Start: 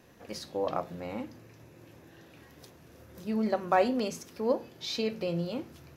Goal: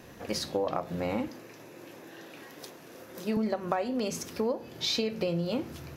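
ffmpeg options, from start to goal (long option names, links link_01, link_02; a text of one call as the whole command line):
ffmpeg -i in.wav -filter_complex "[0:a]asettb=1/sr,asplit=3[link_01][link_02][link_03];[link_01]atrim=end=1.284[link_04];[link_02]atrim=start=1.28:end=3.37,asetpts=PTS-STARTPTS,afade=type=in:duration=0.004:curve=qsin,afade=type=out:start_time=2.086:duration=0.004:curve=qsin,highpass=260[link_05];[link_03]atrim=start=3.366[link_06];[link_04][link_05]acrossfade=duration=0.004:curve1=hsin:curve2=qsin[link_07];[link_07][link_06]acrossfade=duration=0.004:curve1=qsin:curve2=hsin,acompressor=threshold=-34dB:ratio=20,volume=8.5dB" out.wav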